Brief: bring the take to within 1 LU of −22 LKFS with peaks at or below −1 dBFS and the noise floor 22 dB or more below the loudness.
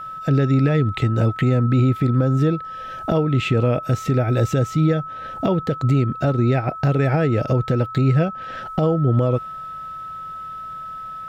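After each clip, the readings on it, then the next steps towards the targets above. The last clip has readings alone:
interfering tone 1,300 Hz; level of the tone −30 dBFS; integrated loudness −20.0 LKFS; sample peak −7.5 dBFS; target loudness −22.0 LKFS
→ notch filter 1,300 Hz, Q 30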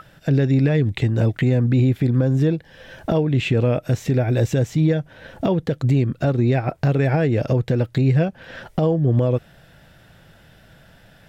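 interfering tone none found; integrated loudness −20.0 LKFS; sample peak −7.5 dBFS; target loudness −22.0 LKFS
→ level −2 dB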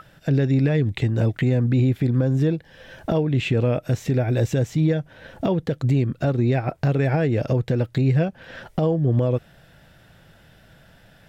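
integrated loudness −22.0 LKFS; sample peak −9.5 dBFS; background noise floor −53 dBFS

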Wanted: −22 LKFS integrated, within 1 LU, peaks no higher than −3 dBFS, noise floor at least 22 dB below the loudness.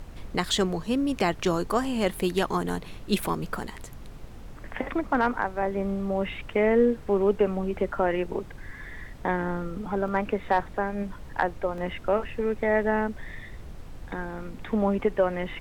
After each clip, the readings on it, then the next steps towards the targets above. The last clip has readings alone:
number of dropouts 2; longest dropout 2.0 ms; background noise floor −43 dBFS; target noise floor −50 dBFS; integrated loudness −27.5 LKFS; sample peak −10.0 dBFS; target loudness −22.0 LKFS
→ repair the gap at 0:10.08/0:11.78, 2 ms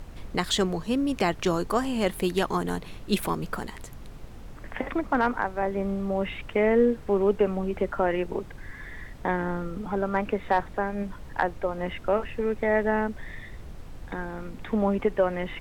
number of dropouts 0; background noise floor −43 dBFS; target noise floor −50 dBFS
→ noise reduction from a noise print 7 dB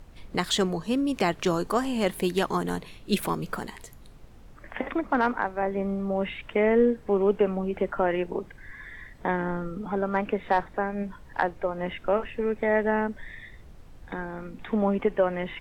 background noise floor −49 dBFS; target noise floor −50 dBFS
→ noise reduction from a noise print 6 dB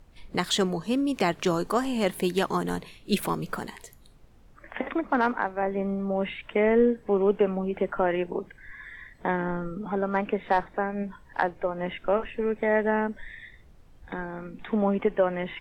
background noise floor −54 dBFS; integrated loudness −27.5 LKFS; sample peak −10.0 dBFS; target loudness −22.0 LKFS
→ level +5.5 dB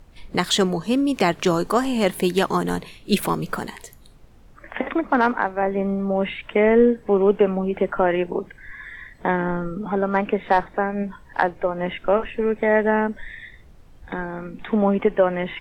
integrated loudness −22.0 LKFS; sample peak −4.5 dBFS; background noise floor −48 dBFS

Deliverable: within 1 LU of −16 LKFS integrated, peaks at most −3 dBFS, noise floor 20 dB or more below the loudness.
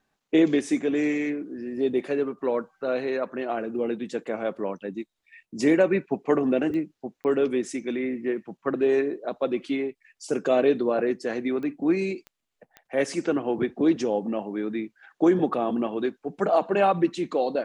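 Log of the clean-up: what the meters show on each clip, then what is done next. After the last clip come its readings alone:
number of clicks 5; integrated loudness −26.0 LKFS; sample peak −9.5 dBFS; target loudness −16.0 LKFS
→ click removal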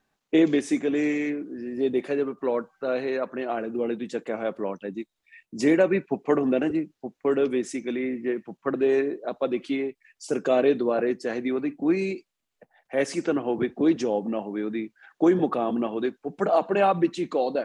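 number of clicks 0; integrated loudness −26.0 LKFS; sample peak −9.5 dBFS; target loudness −16.0 LKFS
→ level +10 dB
brickwall limiter −3 dBFS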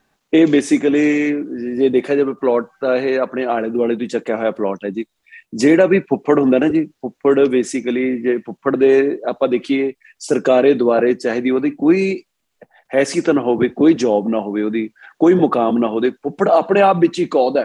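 integrated loudness −16.5 LKFS; sample peak −3.0 dBFS; background noise floor −72 dBFS

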